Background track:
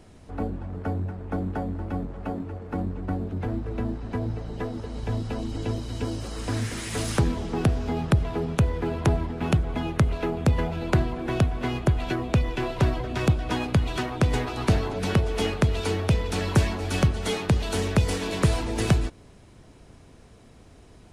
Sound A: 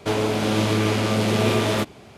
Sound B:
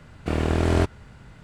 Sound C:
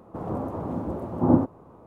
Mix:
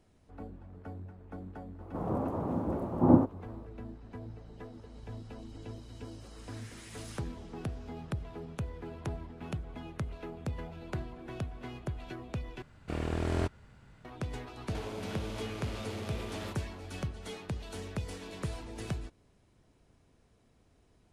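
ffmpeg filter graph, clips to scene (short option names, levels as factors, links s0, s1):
-filter_complex "[0:a]volume=0.168[s0];[1:a]acompressor=threshold=0.0501:ratio=6:attack=3.2:release=140:knee=1:detection=peak[s1];[s0]asplit=2[s2][s3];[s2]atrim=end=12.624[s4];[2:a]atrim=end=1.43,asetpts=PTS-STARTPTS,volume=0.299[s5];[s3]atrim=start=14.046[s6];[3:a]atrim=end=1.86,asetpts=PTS-STARTPTS,volume=0.75,afade=t=in:d=0.004:c=hsin,afade=t=out:st=1.856:d=0.004:c=hsin,adelay=1800[s7];[s1]atrim=end=2.17,asetpts=PTS-STARTPTS,volume=0.266,afade=t=in:d=0.004:c=hsin,afade=t=out:st=2.166:d=0.004:c=hsin,adelay=14690[s8];[s4][s5]acrossfade=d=0.004:c1=hsin:c2=hsin[s9];[s9][s6]acrossfade=d=0.004:c1=hsin:c2=hsin[s10];[s10][s7][s8]amix=inputs=3:normalize=0"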